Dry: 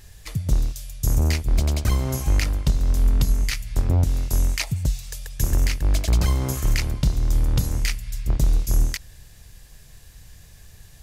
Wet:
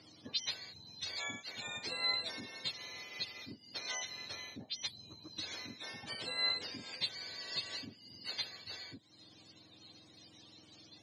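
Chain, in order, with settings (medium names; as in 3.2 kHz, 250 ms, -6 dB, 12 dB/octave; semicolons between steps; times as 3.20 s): spectrum inverted on a logarithmic axis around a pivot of 730 Hz; compression 4:1, threshold -35 dBFS, peak gain reduction 17 dB; cabinet simulation 410–4600 Hz, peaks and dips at 880 Hz -4 dB, 1.3 kHz -6 dB, 2.2 kHz +4 dB, 4.1 kHz +7 dB; trim +1.5 dB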